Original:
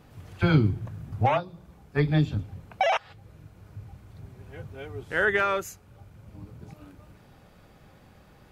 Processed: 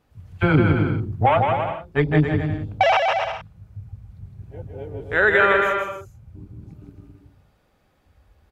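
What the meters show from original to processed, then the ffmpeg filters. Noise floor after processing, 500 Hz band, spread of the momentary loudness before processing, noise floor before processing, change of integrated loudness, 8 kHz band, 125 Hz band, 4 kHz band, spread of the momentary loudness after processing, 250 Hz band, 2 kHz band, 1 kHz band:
-63 dBFS, +8.0 dB, 22 LU, -55 dBFS, +6.0 dB, no reading, +4.5 dB, +6.0 dB, 19 LU, +6.0 dB, +8.5 dB, +8.5 dB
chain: -af "equalizer=f=150:w=1:g=-5,afwtdn=0.0141,aecho=1:1:160|272|350.4|405.3|443.7:0.631|0.398|0.251|0.158|0.1,volume=2.11"

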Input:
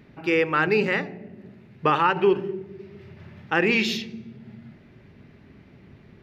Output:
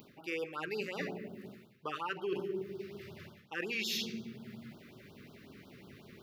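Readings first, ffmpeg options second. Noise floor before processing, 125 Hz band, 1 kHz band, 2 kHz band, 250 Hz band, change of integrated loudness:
-52 dBFS, -15.0 dB, -18.5 dB, -15.5 dB, -14.5 dB, -16.5 dB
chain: -af "aemphasis=mode=production:type=bsi,areverse,acompressor=threshold=0.0178:ratio=8,areverse,afftfilt=real='re*(1-between(b*sr/1024,720*pow(2200/720,0.5+0.5*sin(2*PI*5.5*pts/sr))/1.41,720*pow(2200/720,0.5+0.5*sin(2*PI*5.5*pts/sr))*1.41))':imag='im*(1-between(b*sr/1024,720*pow(2200/720,0.5+0.5*sin(2*PI*5.5*pts/sr))/1.41,720*pow(2200/720,0.5+0.5*sin(2*PI*5.5*pts/sr))*1.41))':win_size=1024:overlap=0.75,volume=1.12"

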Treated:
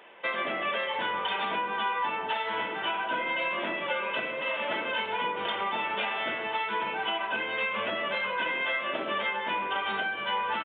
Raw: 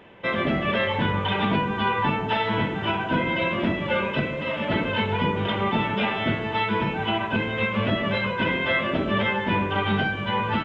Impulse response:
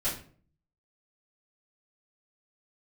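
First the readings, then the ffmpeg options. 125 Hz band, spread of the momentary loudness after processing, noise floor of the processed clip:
-26.0 dB, 2 LU, -35 dBFS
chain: -filter_complex "[0:a]highpass=570,acompressor=threshold=0.0447:ratio=6,asplit=2[s0][s1];[1:a]atrim=start_sample=2205,adelay=6[s2];[s1][s2]afir=irnorm=-1:irlink=0,volume=0.106[s3];[s0][s3]amix=inputs=2:normalize=0,aresample=8000,aresample=44100"

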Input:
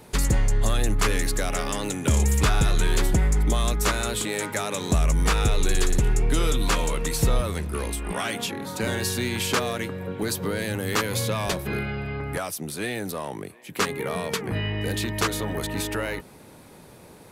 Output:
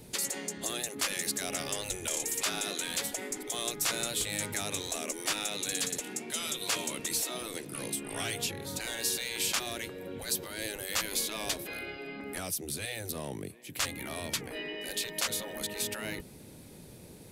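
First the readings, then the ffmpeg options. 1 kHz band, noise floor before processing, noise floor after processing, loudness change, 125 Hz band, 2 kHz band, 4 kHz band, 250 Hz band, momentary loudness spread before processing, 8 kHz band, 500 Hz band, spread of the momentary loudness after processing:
-11.0 dB, -48 dBFS, -50 dBFS, -7.5 dB, -20.5 dB, -7.0 dB, -3.0 dB, -12.5 dB, 8 LU, -1.5 dB, -10.5 dB, 9 LU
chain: -af "equalizer=f=1100:w=0.74:g=-12.5,afftfilt=real='re*lt(hypot(re,im),0.1)':imag='im*lt(hypot(re,im),0.1)':win_size=1024:overlap=0.75"

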